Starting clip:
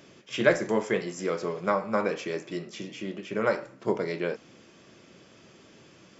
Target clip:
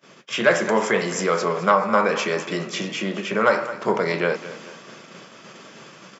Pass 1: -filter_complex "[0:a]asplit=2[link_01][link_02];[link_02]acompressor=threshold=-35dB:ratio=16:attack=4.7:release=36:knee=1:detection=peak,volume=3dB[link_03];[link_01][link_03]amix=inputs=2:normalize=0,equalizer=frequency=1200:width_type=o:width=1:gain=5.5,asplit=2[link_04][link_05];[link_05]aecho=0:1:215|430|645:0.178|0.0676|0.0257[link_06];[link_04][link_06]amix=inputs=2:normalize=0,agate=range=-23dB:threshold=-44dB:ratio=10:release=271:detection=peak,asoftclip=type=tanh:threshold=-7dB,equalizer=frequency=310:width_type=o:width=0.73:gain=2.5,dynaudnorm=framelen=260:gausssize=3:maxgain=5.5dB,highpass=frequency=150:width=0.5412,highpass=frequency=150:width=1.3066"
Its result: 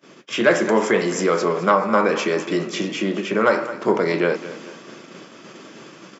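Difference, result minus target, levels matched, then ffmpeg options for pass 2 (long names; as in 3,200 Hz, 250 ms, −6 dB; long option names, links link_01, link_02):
250 Hz band +3.0 dB
-filter_complex "[0:a]asplit=2[link_01][link_02];[link_02]acompressor=threshold=-35dB:ratio=16:attack=4.7:release=36:knee=1:detection=peak,volume=3dB[link_03];[link_01][link_03]amix=inputs=2:normalize=0,equalizer=frequency=1200:width_type=o:width=1:gain=5.5,asplit=2[link_04][link_05];[link_05]aecho=0:1:215|430|645:0.178|0.0676|0.0257[link_06];[link_04][link_06]amix=inputs=2:normalize=0,agate=range=-23dB:threshold=-44dB:ratio=10:release=271:detection=peak,asoftclip=type=tanh:threshold=-7dB,equalizer=frequency=310:width_type=o:width=0.73:gain=-6.5,dynaudnorm=framelen=260:gausssize=3:maxgain=5.5dB,highpass=frequency=150:width=0.5412,highpass=frequency=150:width=1.3066"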